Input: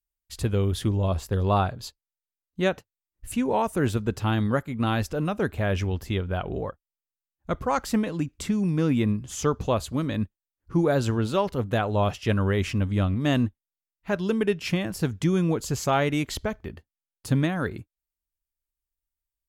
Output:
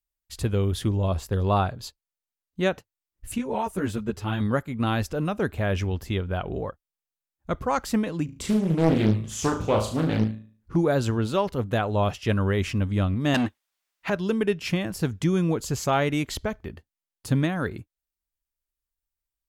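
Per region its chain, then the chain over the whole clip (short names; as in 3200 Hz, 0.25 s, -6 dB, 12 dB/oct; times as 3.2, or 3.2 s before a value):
3.38–4.41 notch 800 Hz, Q 24 + ensemble effect
8.25–10.76 doubler 19 ms -10 dB + flutter echo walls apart 6.3 m, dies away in 0.45 s + Doppler distortion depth 0.88 ms
13.34–14.1 overdrive pedal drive 25 dB, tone 4000 Hz, clips at -12 dBFS + low shelf 400 Hz -5.5 dB
whole clip: dry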